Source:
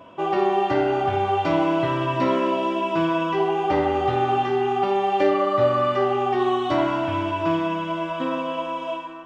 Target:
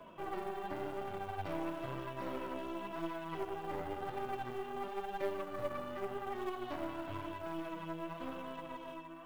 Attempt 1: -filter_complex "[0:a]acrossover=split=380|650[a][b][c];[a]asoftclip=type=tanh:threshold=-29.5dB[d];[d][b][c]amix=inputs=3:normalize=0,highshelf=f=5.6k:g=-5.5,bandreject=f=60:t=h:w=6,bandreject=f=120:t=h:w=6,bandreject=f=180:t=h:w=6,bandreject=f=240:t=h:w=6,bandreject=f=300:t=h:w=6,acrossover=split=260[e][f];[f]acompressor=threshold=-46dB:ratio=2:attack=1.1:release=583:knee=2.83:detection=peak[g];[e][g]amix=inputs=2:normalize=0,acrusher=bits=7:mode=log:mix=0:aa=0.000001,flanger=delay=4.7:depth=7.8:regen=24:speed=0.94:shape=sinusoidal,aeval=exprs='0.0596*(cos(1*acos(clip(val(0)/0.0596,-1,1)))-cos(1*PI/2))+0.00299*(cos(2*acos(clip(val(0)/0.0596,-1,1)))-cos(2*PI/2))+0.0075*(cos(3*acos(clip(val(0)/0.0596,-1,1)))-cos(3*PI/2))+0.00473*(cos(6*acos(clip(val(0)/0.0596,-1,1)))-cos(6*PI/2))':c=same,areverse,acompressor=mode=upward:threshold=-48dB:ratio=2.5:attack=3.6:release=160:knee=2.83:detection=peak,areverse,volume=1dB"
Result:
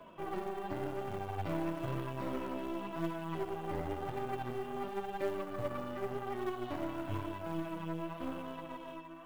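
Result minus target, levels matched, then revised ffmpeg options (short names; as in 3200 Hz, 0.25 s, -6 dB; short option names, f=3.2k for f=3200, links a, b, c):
soft clip: distortion -6 dB
-filter_complex "[0:a]acrossover=split=380|650[a][b][c];[a]asoftclip=type=tanh:threshold=-39.5dB[d];[d][b][c]amix=inputs=3:normalize=0,highshelf=f=5.6k:g=-5.5,bandreject=f=60:t=h:w=6,bandreject=f=120:t=h:w=6,bandreject=f=180:t=h:w=6,bandreject=f=240:t=h:w=6,bandreject=f=300:t=h:w=6,acrossover=split=260[e][f];[f]acompressor=threshold=-46dB:ratio=2:attack=1.1:release=583:knee=2.83:detection=peak[g];[e][g]amix=inputs=2:normalize=0,acrusher=bits=7:mode=log:mix=0:aa=0.000001,flanger=delay=4.7:depth=7.8:regen=24:speed=0.94:shape=sinusoidal,aeval=exprs='0.0596*(cos(1*acos(clip(val(0)/0.0596,-1,1)))-cos(1*PI/2))+0.00299*(cos(2*acos(clip(val(0)/0.0596,-1,1)))-cos(2*PI/2))+0.0075*(cos(3*acos(clip(val(0)/0.0596,-1,1)))-cos(3*PI/2))+0.00473*(cos(6*acos(clip(val(0)/0.0596,-1,1)))-cos(6*PI/2))':c=same,areverse,acompressor=mode=upward:threshold=-48dB:ratio=2.5:attack=3.6:release=160:knee=2.83:detection=peak,areverse,volume=1dB"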